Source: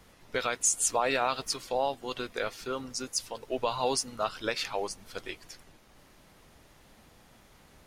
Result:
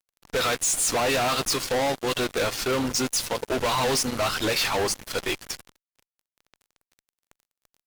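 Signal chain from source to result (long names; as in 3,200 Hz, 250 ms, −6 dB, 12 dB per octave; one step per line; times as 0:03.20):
mains-hum notches 60/120/180 Hz
fuzz pedal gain 43 dB, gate −48 dBFS
level −8.5 dB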